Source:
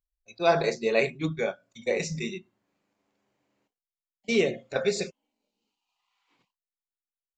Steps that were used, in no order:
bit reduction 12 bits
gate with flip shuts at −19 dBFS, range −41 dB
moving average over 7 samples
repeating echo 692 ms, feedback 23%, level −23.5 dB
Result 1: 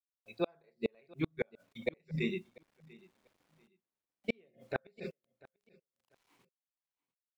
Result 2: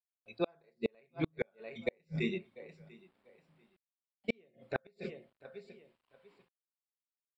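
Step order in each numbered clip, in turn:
moving average, then bit reduction, then gate with flip, then repeating echo
repeating echo, then bit reduction, then moving average, then gate with flip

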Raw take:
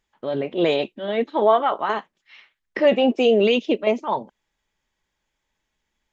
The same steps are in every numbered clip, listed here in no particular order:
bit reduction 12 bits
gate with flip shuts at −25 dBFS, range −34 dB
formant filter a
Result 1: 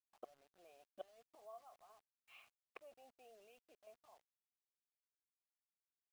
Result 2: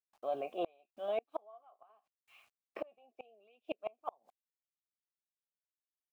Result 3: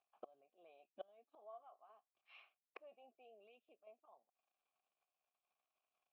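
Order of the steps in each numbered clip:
gate with flip, then formant filter, then bit reduction
formant filter, then bit reduction, then gate with flip
bit reduction, then gate with flip, then formant filter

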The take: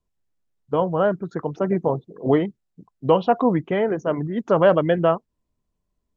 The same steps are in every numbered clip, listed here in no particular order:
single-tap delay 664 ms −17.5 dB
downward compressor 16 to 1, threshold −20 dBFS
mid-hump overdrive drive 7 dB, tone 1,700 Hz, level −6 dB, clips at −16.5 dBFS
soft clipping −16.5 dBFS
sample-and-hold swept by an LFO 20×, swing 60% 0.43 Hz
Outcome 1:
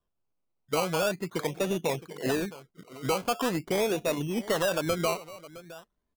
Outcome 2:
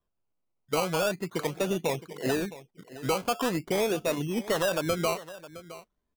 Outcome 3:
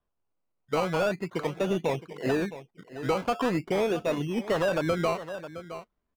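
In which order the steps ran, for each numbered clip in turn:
downward compressor, then soft clipping, then mid-hump overdrive, then single-tap delay, then sample-and-hold swept by an LFO
downward compressor, then mid-hump overdrive, then sample-and-hold swept by an LFO, then single-tap delay, then soft clipping
sample-and-hold swept by an LFO, then mid-hump overdrive, then single-tap delay, then downward compressor, then soft clipping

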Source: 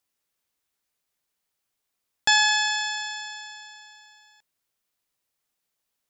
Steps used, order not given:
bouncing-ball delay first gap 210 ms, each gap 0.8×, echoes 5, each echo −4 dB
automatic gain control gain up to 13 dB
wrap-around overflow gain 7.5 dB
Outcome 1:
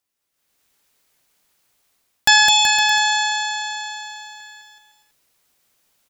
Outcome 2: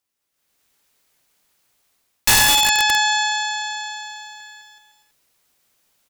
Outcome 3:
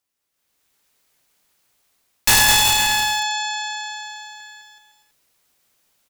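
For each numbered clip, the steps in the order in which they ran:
wrap-around overflow, then bouncing-ball delay, then automatic gain control
bouncing-ball delay, then automatic gain control, then wrap-around overflow
automatic gain control, then wrap-around overflow, then bouncing-ball delay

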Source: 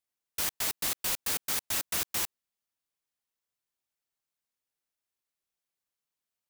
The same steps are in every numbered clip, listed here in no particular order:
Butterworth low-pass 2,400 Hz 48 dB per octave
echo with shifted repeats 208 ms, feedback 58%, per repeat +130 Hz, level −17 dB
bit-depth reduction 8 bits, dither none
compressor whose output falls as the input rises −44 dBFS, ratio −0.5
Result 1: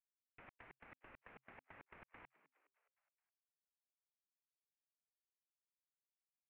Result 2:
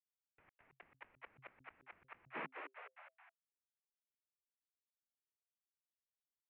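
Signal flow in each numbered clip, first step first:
compressor whose output falls as the input rises, then bit-depth reduction, then echo with shifted repeats, then Butterworth low-pass
bit-depth reduction, then echo with shifted repeats, then compressor whose output falls as the input rises, then Butterworth low-pass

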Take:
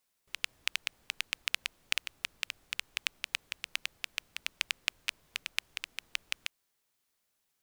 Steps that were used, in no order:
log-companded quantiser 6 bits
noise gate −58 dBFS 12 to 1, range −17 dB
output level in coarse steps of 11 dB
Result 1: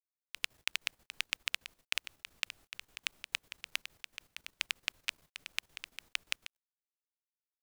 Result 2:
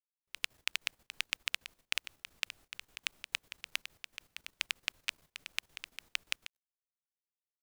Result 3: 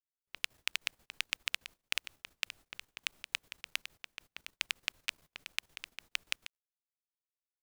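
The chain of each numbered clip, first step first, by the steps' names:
noise gate, then log-companded quantiser, then output level in coarse steps
log-companded quantiser, then noise gate, then output level in coarse steps
log-companded quantiser, then output level in coarse steps, then noise gate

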